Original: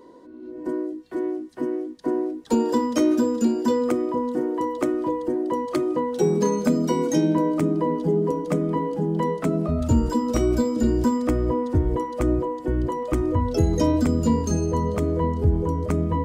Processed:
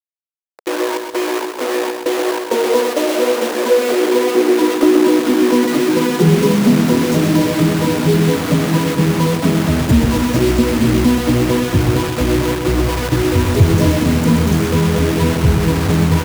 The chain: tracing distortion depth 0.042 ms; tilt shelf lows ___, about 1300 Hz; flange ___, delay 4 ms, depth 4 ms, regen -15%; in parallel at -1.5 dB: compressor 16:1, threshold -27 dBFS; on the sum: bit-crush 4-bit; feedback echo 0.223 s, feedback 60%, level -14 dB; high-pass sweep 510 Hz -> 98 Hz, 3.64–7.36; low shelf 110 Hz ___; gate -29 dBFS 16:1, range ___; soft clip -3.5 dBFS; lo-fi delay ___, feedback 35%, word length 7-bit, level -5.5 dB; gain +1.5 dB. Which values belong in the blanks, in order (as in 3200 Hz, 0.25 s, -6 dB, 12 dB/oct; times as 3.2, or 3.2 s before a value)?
+5.5 dB, 1.8 Hz, +5.5 dB, -10 dB, 0.128 s